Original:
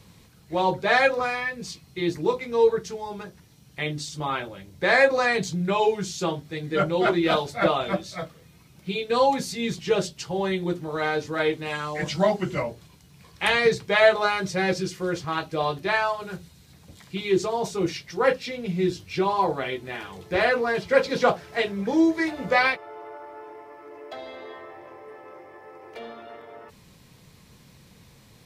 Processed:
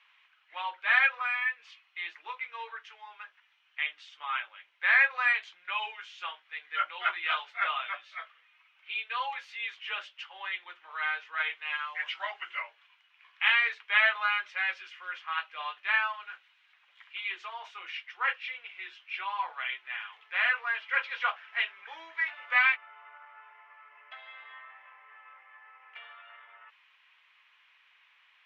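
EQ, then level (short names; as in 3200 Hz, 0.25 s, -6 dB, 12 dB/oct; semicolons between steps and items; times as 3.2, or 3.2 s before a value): HPF 1200 Hz 24 dB/oct; air absorption 260 m; resonant high shelf 3600 Hz -6.5 dB, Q 3; 0.0 dB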